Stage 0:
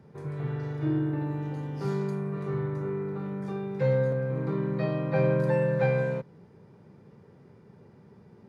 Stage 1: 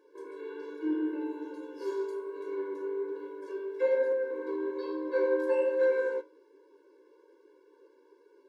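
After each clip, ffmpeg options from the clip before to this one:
ffmpeg -i in.wav -af "bandreject=frequency=45.05:width_type=h:width=4,bandreject=frequency=90.1:width_type=h:width=4,bandreject=frequency=135.15:width_type=h:width=4,bandreject=frequency=180.2:width_type=h:width=4,bandreject=frequency=225.25:width_type=h:width=4,bandreject=frequency=270.3:width_type=h:width=4,bandreject=frequency=315.35:width_type=h:width=4,bandreject=frequency=360.4:width_type=h:width=4,bandreject=frequency=405.45:width_type=h:width=4,bandreject=frequency=450.5:width_type=h:width=4,bandreject=frequency=495.55:width_type=h:width=4,bandreject=frequency=540.6:width_type=h:width=4,bandreject=frequency=585.65:width_type=h:width=4,bandreject=frequency=630.7:width_type=h:width=4,bandreject=frequency=675.75:width_type=h:width=4,bandreject=frequency=720.8:width_type=h:width=4,bandreject=frequency=765.85:width_type=h:width=4,bandreject=frequency=810.9:width_type=h:width=4,bandreject=frequency=855.95:width_type=h:width=4,bandreject=frequency=901:width_type=h:width=4,bandreject=frequency=946.05:width_type=h:width=4,bandreject=frequency=991.1:width_type=h:width=4,bandreject=frequency=1036.15:width_type=h:width=4,bandreject=frequency=1081.2:width_type=h:width=4,bandreject=frequency=1126.25:width_type=h:width=4,bandreject=frequency=1171.3:width_type=h:width=4,bandreject=frequency=1216.35:width_type=h:width=4,bandreject=frequency=1261.4:width_type=h:width=4,bandreject=frequency=1306.45:width_type=h:width=4,flanger=delay=9.3:depth=6.7:regen=49:speed=1.2:shape=sinusoidal,afftfilt=real='re*eq(mod(floor(b*sr/1024/290),2),1)':imag='im*eq(mod(floor(b*sr/1024/290),2),1)':win_size=1024:overlap=0.75,volume=4dB" out.wav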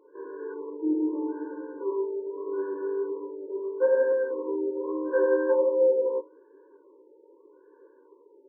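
ffmpeg -i in.wav -af "afftfilt=real='re*lt(b*sr/1024,920*pow(2000/920,0.5+0.5*sin(2*PI*0.8*pts/sr)))':imag='im*lt(b*sr/1024,920*pow(2000/920,0.5+0.5*sin(2*PI*0.8*pts/sr)))':win_size=1024:overlap=0.75,volume=4.5dB" out.wav

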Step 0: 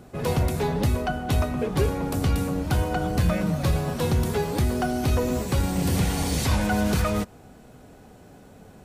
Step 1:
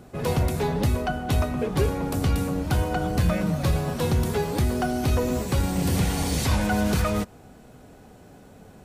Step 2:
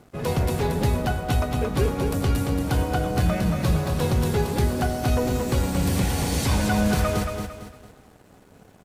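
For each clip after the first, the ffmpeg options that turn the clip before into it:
ffmpeg -i in.wav -af anull out.wav
ffmpeg -i in.wav -filter_complex "[0:a]asplit=2[link_01][link_02];[link_02]aecho=0:1:226|452|678|904|1130:0.562|0.219|0.0855|0.0334|0.013[link_03];[link_01][link_03]amix=inputs=2:normalize=0,aeval=exprs='sgn(val(0))*max(abs(val(0))-0.00299,0)':channel_layout=same" out.wav

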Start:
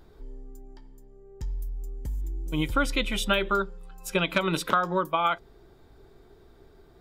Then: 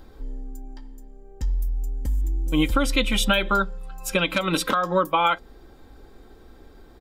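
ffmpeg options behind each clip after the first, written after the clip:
ffmpeg -i in.wav -filter_complex "[0:a]aecho=1:1:3.8:0.53,acrossover=split=4000[link_01][link_02];[link_01]alimiter=limit=-15.5dB:level=0:latency=1:release=231[link_03];[link_03][link_02]amix=inputs=2:normalize=0,volume=5.5dB" out.wav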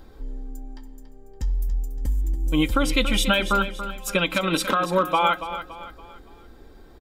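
ffmpeg -i in.wav -af "aecho=1:1:283|566|849|1132:0.266|0.106|0.0426|0.017" out.wav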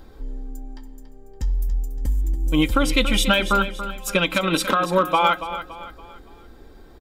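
ffmpeg -i in.wav -af "aeval=exprs='0.398*(cos(1*acos(clip(val(0)/0.398,-1,1)))-cos(1*PI/2))+0.0178*(cos(3*acos(clip(val(0)/0.398,-1,1)))-cos(3*PI/2))':channel_layout=same,volume=3dB" out.wav

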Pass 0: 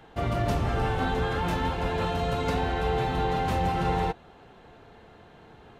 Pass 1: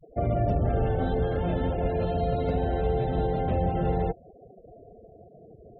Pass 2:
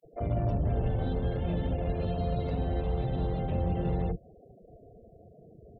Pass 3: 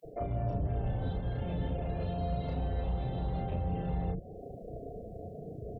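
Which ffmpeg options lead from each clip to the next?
ffmpeg -i in.wav -filter_complex "[0:a]lowshelf=frequency=780:width_type=q:width=3:gain=6.5,afftfilt=real='re*gte(hypot(re,im),0.0224)':imag='im*gte(hypot(re,im),0.0224)':win_size=1024:overlap=0.75,acrossover=split=170[link_01][link_02];[link_02]acompressor=threshold=-23dB:ratio=2.5[link_03];[link_01][link_03]amix=inputs=2:normalize=0,volume=-4dB" out.wav
ffmpeg -i in.wav -filter_complex "[0:a]equalizer=frequency=1100:width_type=o:width=1.1:gain=-13.5,asoftclip=type=tanh:threshold=-21dB,acrossover=split=360[link_01][link_02];[link_01]adelay=40[link_03];[link_03][link_02]amix=inputs=2:normalize=0" out.wav
ffmpeg -i in.wav -filter_complex "[0:a]areverse,acompressor=threshold=-35dB:ratio=6,areverse,alimiter=level_in=12dB:limit=-24dB:level=0:latency=1:release=267,volume=-12dB,asplit=2[link_01][link_02];[link_02]adelay=33,volume=-3dB[link_03];[link_01][link_03]amix=inputs=2:normalize=0,volume=8.5dB" out.wav

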